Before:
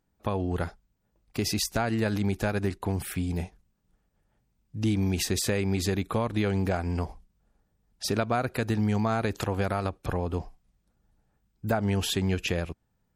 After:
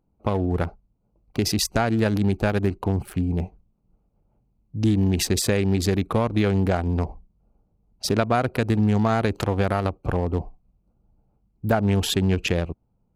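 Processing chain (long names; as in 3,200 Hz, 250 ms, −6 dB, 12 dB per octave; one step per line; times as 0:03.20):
adaptive Wiener filter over 25 samples
level +6 dB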